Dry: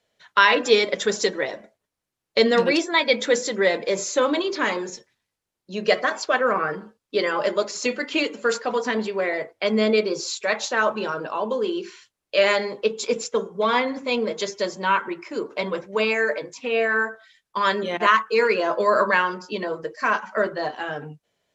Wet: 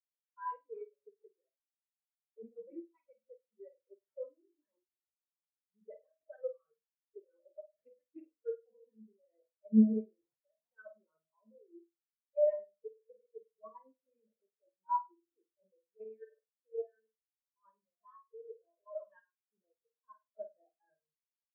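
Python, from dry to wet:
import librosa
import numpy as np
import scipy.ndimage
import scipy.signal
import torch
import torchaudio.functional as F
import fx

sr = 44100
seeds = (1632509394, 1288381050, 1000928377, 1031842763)

y = fx.rattle_buzz(x, sr, strikes_db=-28.0, level_db=-12.0)
y = scipy.signal.sosfilt(scipy.signal.cheby1(4, 1.0, [160.0, 7000.0], 'bandpass', fs=sr, output='sos'), y)
y = fx.bass_treble(y, sr, bass_db=5, treble_db=6)
y = fx.hum_notches(y, sr, base_hz=60, count=9)
y = fx.sample_hold(y, sr, seeds[0], rate_hz=4800.0, jitter_pct=20)
y = fx.level_steps(y, sr, step_db=10)
y = np.clip(y, -10.0 ** (-14.5 / 20.0), 10.0 ** (-14.5 / 20.0))
y = fx.rider(y, sr, range_db=4, speed_s=2.0)
y = fx.room_flutter(y, sr, wall_m=8.6, rt60_s=0.75)
y = fx.spectral_expand(y, sr, expansion=4.0)
y = y * 10.0 ** (-7.5 / 20.0)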